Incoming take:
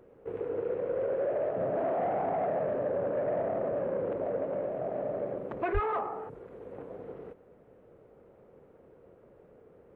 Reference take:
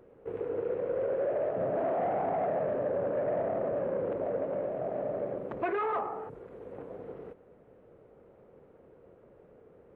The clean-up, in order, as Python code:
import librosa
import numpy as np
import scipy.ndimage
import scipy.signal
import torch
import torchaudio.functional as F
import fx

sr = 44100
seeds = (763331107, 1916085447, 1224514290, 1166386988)

y = fx.highpass(x, sr, hz=140.0, slope=24, at=(5.73, 5.85), fade=0.02)